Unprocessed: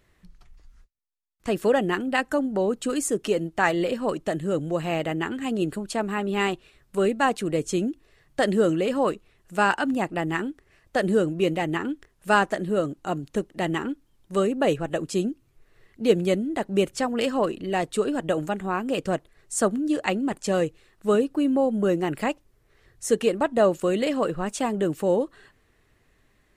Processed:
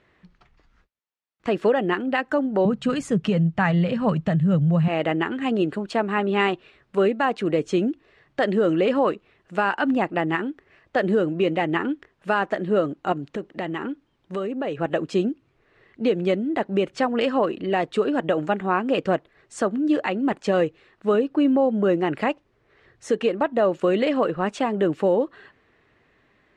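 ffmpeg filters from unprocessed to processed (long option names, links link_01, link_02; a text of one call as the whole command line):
ffmpeg -i in.wav -filter_complex "[0:a]asettb=1/sr,asplit=3[link_01][link_02][link_03];[link_01]atrim=end=2.654[link_04];[link_02]atrim=start=2.65:end=4.88,asetpts=PTS-STARTPTS,afade=type=in:duration=0.004:curve=qsin,afade=type=out:start_time=2.226:duration=0.004:curve=qsin,lowshelf=frequency=230:width_type=q:width=3:gain=11.5[link_05];[link_03]atrim=start=4.876[link_06];[link_04][link_05]acrossfade=duration=0.004:curve1=hsin:curve2=qsin[link_07];[link_07][link_06]acrossfade=duration=0.004:curve1=qsin:curve2=hsin,asettb=1/sr,asplit=3[link_08][link_09][link_10];[link_08]atrim=end=13.124[link_11];[link_09]atrim=start=13.12:end=14.8,asetpts=PTS-STARTPTS,afade=type=in:duration=0.004:curve=qsin,afade=type=out:start_time=1.676:duration=0.004:curve=qsin,acompressor=threshold=-29dB:ratio=6:attack=3.2:release=140:knee=1:detection=peak[link_12];[link_10]atrim=start=14.796[link_13];[link_11][link_12]acrossfade=duration=0.004:curve1=hsin:curve2=qsin[link_14];[link_14][link_13]acrossfade=duration=0.004:curve1=qsin:curve2=hsin,lowpass=3100,alimiter=limit=-16.5dB:level=0:latency=1:release=198,highpass=frequency=210:poles=1,volume=6dB" out.wav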